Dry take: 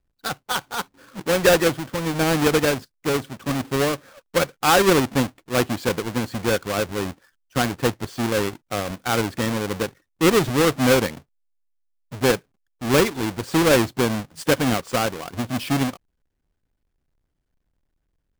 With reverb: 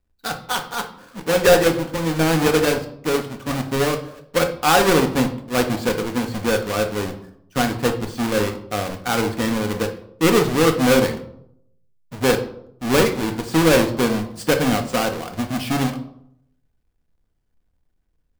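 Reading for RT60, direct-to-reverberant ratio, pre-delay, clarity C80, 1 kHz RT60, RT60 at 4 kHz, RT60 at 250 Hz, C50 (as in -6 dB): 0.75 s, 4.5 dB, 4 ms, 15.0 dB, 0.65 s, 0.45 s, 0.75 s, 11.0 dB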